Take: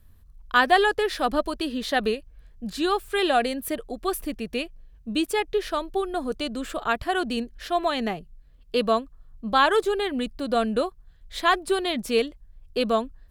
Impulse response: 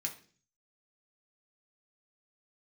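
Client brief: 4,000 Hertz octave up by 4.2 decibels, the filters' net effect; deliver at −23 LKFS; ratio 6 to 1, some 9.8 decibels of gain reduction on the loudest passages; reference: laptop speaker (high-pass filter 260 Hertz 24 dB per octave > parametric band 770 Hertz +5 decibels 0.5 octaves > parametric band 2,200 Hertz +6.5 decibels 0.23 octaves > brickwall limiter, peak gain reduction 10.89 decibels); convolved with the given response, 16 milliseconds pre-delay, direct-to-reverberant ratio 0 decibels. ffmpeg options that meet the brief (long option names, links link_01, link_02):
-filter_complex "[0:a]equalizer=frequency=4000:width_type=o:gain=5,acompressor=threshold=-23dB:ratio=6,asplit=2[link_01][link_02];[1:a]atrim=start_sample=2205,adelay=16[link_03];[link_02][link_03]afir=irnorm=-1:irlink=0,volume=-0.5dB[link_04];[link_01][link_04]amix=inputs=2:normalize=0,highpass=frequency=260:width=0.5412,highpass=frequency=260:width=1.3066,equalizer=frequency=770:width_type=o:width=0.5:gain=5,equalizer=frequency=2200:width_type=o:width=0.23:gain=6.5,volume=7dB,alimiter=limit=-13dB:level=0:latency=1"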